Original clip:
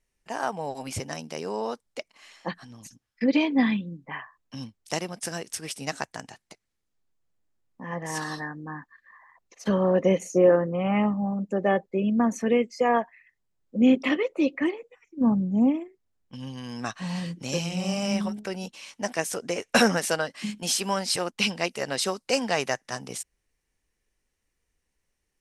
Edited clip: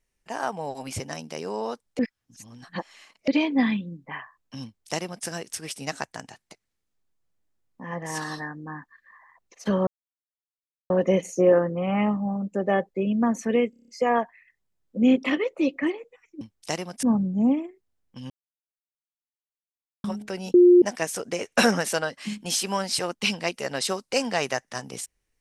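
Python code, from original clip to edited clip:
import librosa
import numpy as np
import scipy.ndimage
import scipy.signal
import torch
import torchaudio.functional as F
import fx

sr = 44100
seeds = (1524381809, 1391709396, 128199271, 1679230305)

y = fx.edit(x, sr, fx.reverse_span(start_s=1.99, length_s=1.29),
    fx.duplicate(start_s=4.64, length_s=0.62, to_s=15.2),
    fx.insert_silence(at_s=9.87, length_s=1.03),
    fx.stutter(start_s=12.67, slice_s=0.03, count=7),
    fx.silence(start_s=16.47, length_s=1.74),
    fx.bleep(start_s=18.71, length_s=0.28, hz=355.0, db=-10.0), tone=tone)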